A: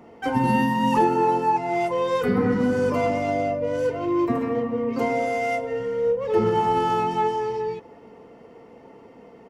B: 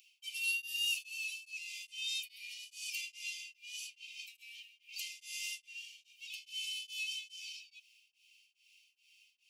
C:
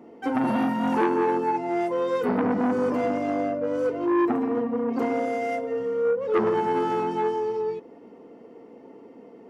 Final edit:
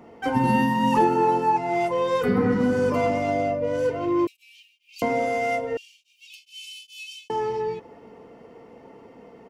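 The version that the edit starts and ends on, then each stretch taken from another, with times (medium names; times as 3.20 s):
A
4.27–5.02 s: from B
5.77–7.30 s: from B
not used: C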